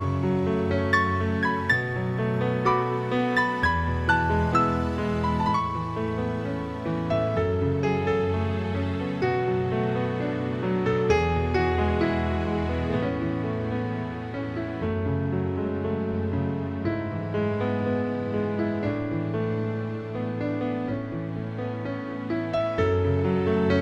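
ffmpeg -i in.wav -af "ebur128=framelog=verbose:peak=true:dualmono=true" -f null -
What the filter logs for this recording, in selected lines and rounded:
Integrated loudness:
  I:         -23.1 LUFS
  Threshold: -33.1 LUFS
Loudness range:
  LRA:         4.5 LU
  Threshold: -43.2 LUFS
  LRA low:   -25.5 LUFS
  LRA high:  -21.0 LUFS
True peak:
  Peak:       -7.8 dBFS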